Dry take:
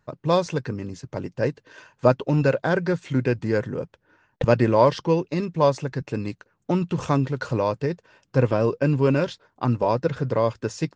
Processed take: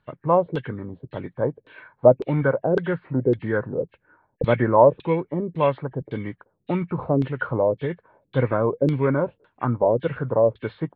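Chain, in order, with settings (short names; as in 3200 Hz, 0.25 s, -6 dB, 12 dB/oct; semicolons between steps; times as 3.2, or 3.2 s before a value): nonlinear frequency compression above 1600 Hz 1.5:1; LFO low-pass saw down 1.8 Hz 370–3800 Hz; gain -2 dB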